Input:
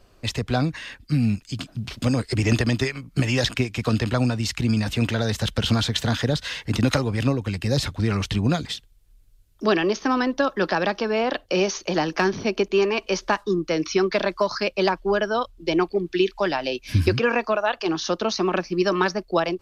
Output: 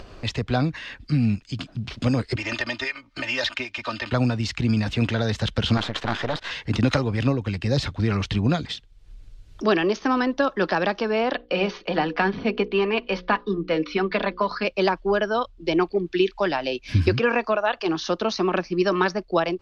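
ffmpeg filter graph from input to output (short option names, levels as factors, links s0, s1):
-filter_complex "[0:a]asettb=1/sr,asplit=3[s0][s1][s2];[s0]atrim=end=2.364[s3];[s1]atrim=start=2.36:end=4.12,asetpts=PTS-STARTPTS,afade=t=in:d=0.004:c=qsin,afade=t=out:st=1.756:d=0.004:c=qsin,acrossover=split=570 6300:gain=0.141 1 0.251[s4][s5][s6];[s4][s5][s6]amix=inputs=3:normalize=0,aecho=1:1:3.3:0.79,atrim=end_sample=77616,asoftclip=type=hard:threshold=0.158[s7];[s2]atrim=start=4.116[s8];[s3][s7]acrossfade=d=0.004:c1=hsin:c2=qsin[s9];[s9][s8]acrossfade=d=0.004:c1=qsin:c2=hsin,asettb=1/sr,asplit=3[s10][s11][s12];[s10]atrim=end=5.774[s13];[s11]atrim=start=5.77:end=6.51,asetpts=PTS-STARTPTS,afade=t=in:d=0.004:c=qsin,afade=t=out:st=0.736:d=0.004:c=qsin,aeval=exprs='max(val(0),0)':c=same,asplit=2[s14][s15];[s15]highpass=f=720:p=1,volume=5.01,asoftclip=type=tanh:threshold=0.422[s16];[s14][s16]amix=inputs=2:normalize=0,lowpass=f=1900:p=1,volume=0.501[s17];[s12]atrim=start=6.506[s18];[s13][s17]acrossfade=d=0.004:c1=hsin:c2=qsin[s19];[s19][s18]acrossfade=d=0.004:c1=qsin:c2=hsin,asettb=1/sr,asplit=3[s20][s21][s22];[s20]atrim=end=11.354[s23];[s21]atrim=start=11.35:end=14.65,asetpts=PTS-STARTPTS,afade=t=in:d=0.004:c=qsin,afade=t=out:st=3.296:d=0.004:c=qsin,lowpass=f=4000:w=0.5412,lowpass=f=4000:w=1.3066,bandreject=f=60:t=h:w=6,bandreject=f=120:t=h:w=6,bandreject=f=180:t=h:w=6,bandreject=f=240:t=h:w=6,bandreject=f=300:t=h:w=6,bandreject=f=360:t=h:w=6,bandreject=f=420:t=h:w=6,bandreject=f=480:t=h:w=6,bandreject=f=540:t=h:w=6,aecho=1:1:4.1:0.44,atrim=end_sample=145530[s24];[s22]atrim=start=14.646[s25];[s23][s24]acrossfade=d=0.004:c1=hsin:c2=qsin[s26];[s26][s25]acrossfade=d=0.004:c1=qsin:c2=hsin,lowpass=4900,acompressor=mode=upward:threshold=0.0316:ratio=2.5"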